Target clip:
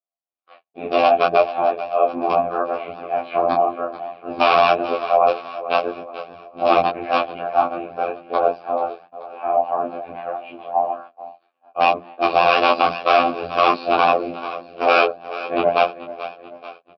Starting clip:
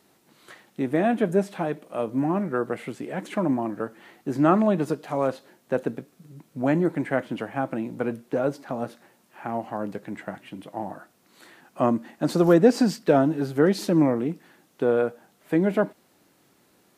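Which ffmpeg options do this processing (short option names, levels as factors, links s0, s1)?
-filter_complex "[0:a]afftfilt=real='re':imag='-im':win_size=2048:overlap=0.75,aresample=11025,aeval=exprs='(mod(7.94*val(0)+1,2)-1)/7.94':c=same,aresample=44100,afftfilt=real='hypot(re,im)*cos(2*PI*random(0))':imag='hypot(re,im)*sin(2*PI*random(1))':win_size=512:overlap=0.75,asplit=2[s0][s1];[s1]aecho=0:1:434|868|1302|1736|2170:0.178|0.0925|0.0481|0.025|0.013[s2];[s0][s2]amix=inputs=2:normalize=0,agate=range=0.00501:threshold=0.00158:ratio=16:detection=peak,afftfilt=real='hypot(re,im)*cos(PI*b)':imag='0':win_size=2048:overlap=0.75,flanger=delay=19.5:depth=2.6:speed=1.8,asplit=3[s3][s4][s5];[s3]bandpass=f=730:t=q:w=8,volume=1[s6];[s4]bandpass=f=1090:t=q:w=8,volume=0.501[s7];[s5]bandpass=f=2440:t=q:w=8,volume=0.355[s8];[s6][s7][s8]amix=inputs=3:normalize=0,bandreject=f=60:t=h:w=6,bandreject=f=120:t=h:w=6,bandreject=f=180:t=h:w=6,alimiter=level_in=63.1:limit=0.891:release=50:level=0:latency=1,volume=0.891"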